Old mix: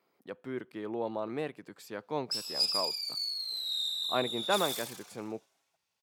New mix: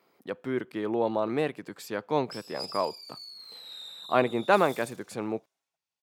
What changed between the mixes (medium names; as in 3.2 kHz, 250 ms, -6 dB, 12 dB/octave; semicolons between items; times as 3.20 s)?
speech +7.5 dB; background -10.0 dB